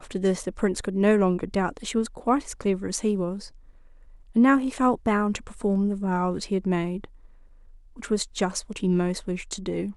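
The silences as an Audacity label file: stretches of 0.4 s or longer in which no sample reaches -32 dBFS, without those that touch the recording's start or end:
3.440000	4.360000	silence
7.040000	7.990000	silence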